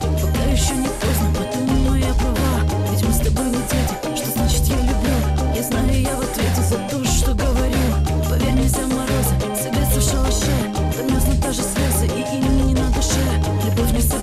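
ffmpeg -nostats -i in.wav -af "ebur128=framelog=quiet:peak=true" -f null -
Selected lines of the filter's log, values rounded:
Integrated loudness:
  I:         -19.1 LUFS
  Threshold: -29.1 LUFS
Loudness range:
  LRA:         0.7 LU
  Threshold: -39.2 LUFS
  LRA low:   -19.5 LUFS
  LRA high:  -18.8 LUFS
True peak:
  Peak:       -6.5 dBFS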